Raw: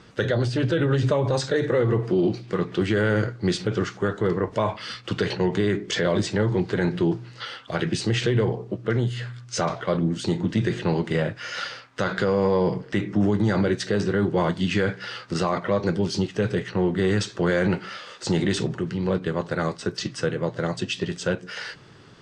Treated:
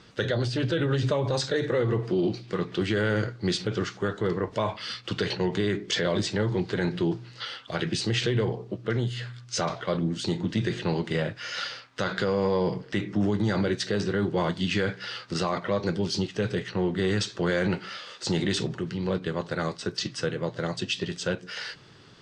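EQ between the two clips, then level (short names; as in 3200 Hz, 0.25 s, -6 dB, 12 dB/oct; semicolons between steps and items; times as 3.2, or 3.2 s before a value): bell 4100 Hz +5.5 dB 1.4 oct; -4.0 dB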